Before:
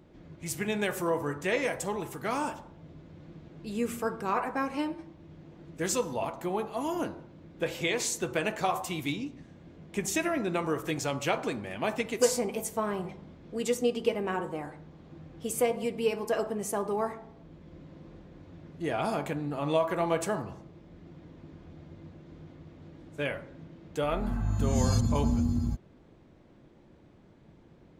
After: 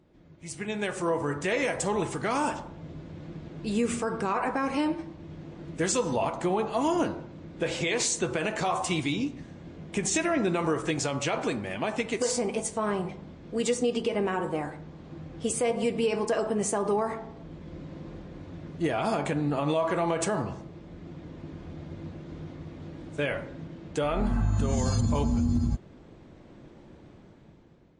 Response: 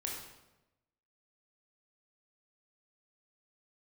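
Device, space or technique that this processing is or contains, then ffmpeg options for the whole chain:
low-bitrate web radio: -af "dynaudnorm=f=460:g=5:m=14dB,alimiter=limit=-12dB:level=0:latency=1:release=82,volume=-5dB" -ar 22050 -c:a libmp3lame -b:a 40k

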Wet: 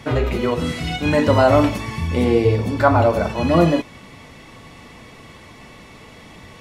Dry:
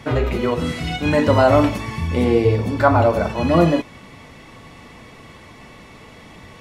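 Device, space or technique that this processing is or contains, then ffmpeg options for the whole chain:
exciter from parts: -filter_complex "[0:a]asplit=2[a][b];[b]highpass=2k,asoftclip=type=tanh:threshold=-29dB,volume=-12dB[c];[a][c]amix=inputs=2:normalize=0"

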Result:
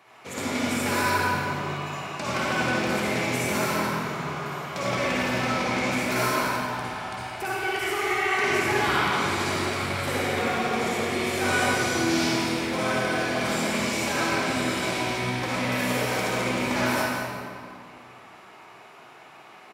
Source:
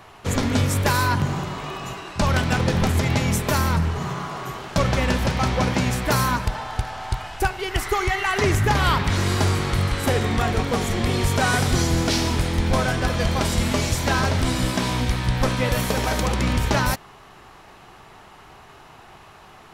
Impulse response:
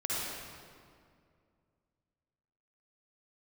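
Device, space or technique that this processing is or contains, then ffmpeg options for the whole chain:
stadium PA: -filter_complex "[0:a]highpass=240,equalizer=f=2.3k:t=o:w=0.33:g=7,aecho=1:1:172|212.8:0.282|0.251[a];[1:a]atrim=start_sample=2205[b];[a][b]afir=irnorm=-1:irlink=0,volume=-9dB"

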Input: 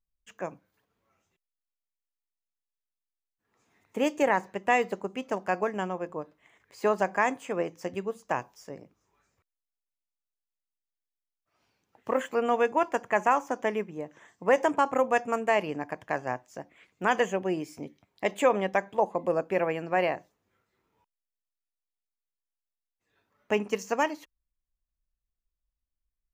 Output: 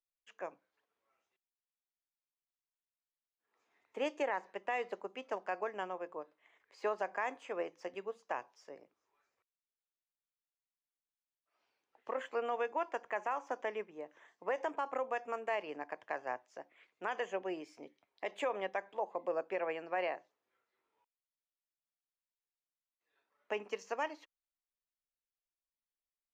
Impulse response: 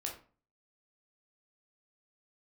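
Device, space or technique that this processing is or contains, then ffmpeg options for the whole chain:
DJ mixer with the lows and highs turned down: -filter_complex "[0:a]acrossover=split=330 5900:gain=0.0891 1 0.1[a][b][c];[a][b][c]amix=inputs=3:normalize=0,alimiter=limit=-19dB:level=0:latency=1:release=136,volume=-6.5dB"

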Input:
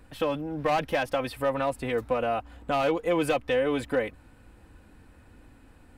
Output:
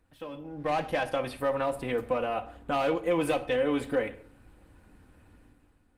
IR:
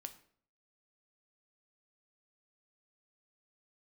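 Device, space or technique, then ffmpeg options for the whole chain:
speakerphone in a meeting room: -filter_complex "[1:a]atrim=start_sample=2205[a];[0:a][a]afir=irnorm=-1:irlink=0,dynaudnorm=f=110:g=11:m=12dB,volume=-9dB" -ar 48000 -c:a libopus -b:a 24k

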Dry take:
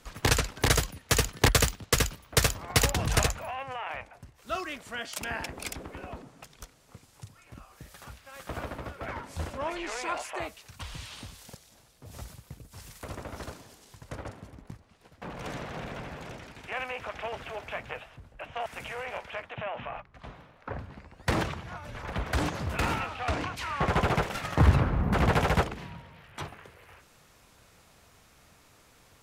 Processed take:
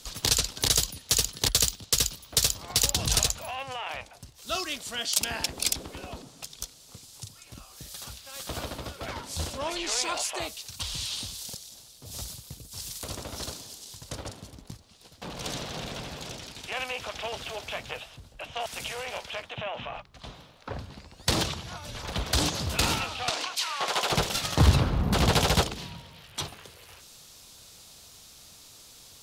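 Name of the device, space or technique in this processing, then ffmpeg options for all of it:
over-bright horn tweeter: -filter_complex "[0:a]asettb=1/sr,asplit=3[a][b][c];[a]atrim=end=23.294[d];[b]atrim=start=23.29:end=24.12,asetpts=PTS-STARTPTS,afade=t=in:d=0.004:c=qsin,afade=t=out:st=0.826:d=0.004:c=qsin,highpass=590[e];[c]atrim=start=24.116[f];[d][e]acrossfade=d=0.004:c1=hsin:c2=qsin[g];[g][f]acrossfade=d=0.004:c1=qsin:c2=hsin,highshelf=f=2.8k:t=q:w=1.5:g=11,alimiter=limit=-10dB:level=0:latency=1:release=314,volume=1dB"

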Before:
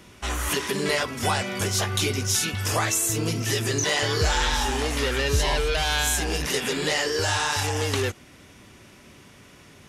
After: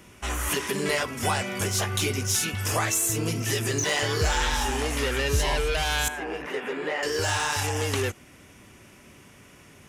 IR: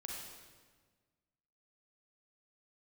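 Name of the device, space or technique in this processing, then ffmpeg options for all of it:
exciter from parts: -filter_complex "[0:a]asplit=2[a][b];[b]highpass=2.6k,asoftclip=type=tanh:threshold=-27dB,highpass=f=2.9k:w=0.5412,highpass=f=2.9k:w=1.3066,volume=-6dB[c];[a][c]amix=inputs=2:normalize=0,asettb=1/sr,asplit=3[d][e][f];[d]atrim=end=6.084[g];[e]atrim=start=6.08:end=7.03,asetpts=PTS-STARTPTS,afade=t=in:d=0.004:c=qsin,afade=t=out:st=0.946:d=0.004:c=qsin,acrossover=split=250 2400:gain=0.126 1 0.0708[h][i][j];[h][i][j]amix=inputs=3:normalize=0[k];[f]atrim=start=7.026[l];[g][k]acrossfade=d=0.004:c1=hsin:c2=qsin[m];[m][l]acrossfade=d=0.004:c1=qsin:c2=hsin,volume=-1.5dB"

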